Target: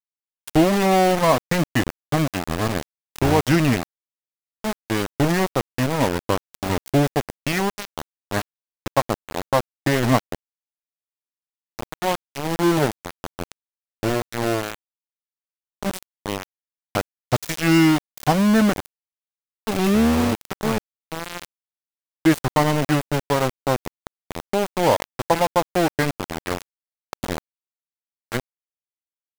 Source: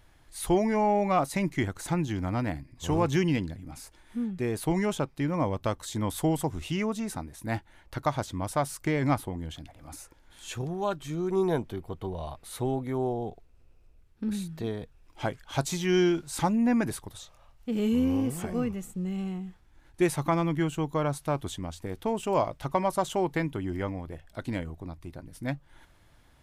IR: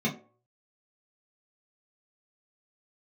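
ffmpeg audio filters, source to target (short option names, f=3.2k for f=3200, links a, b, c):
-af "asetrate=39646,aresample=44100,aeval=exprs='val(0)*gte(abs(val(0)),0.0501)':c=same,volume=8dB"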